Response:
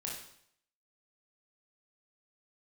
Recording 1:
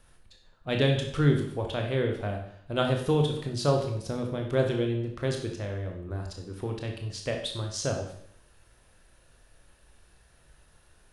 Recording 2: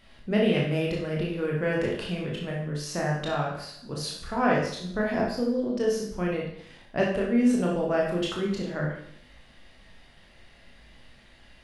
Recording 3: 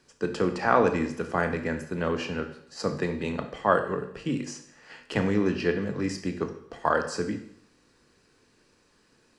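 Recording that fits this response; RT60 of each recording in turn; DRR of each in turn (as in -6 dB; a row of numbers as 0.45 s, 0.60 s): 2; 0.65 s, 0.65 s, 0.65 s; 2.0 dB, -3.0 dB, 6.5 dB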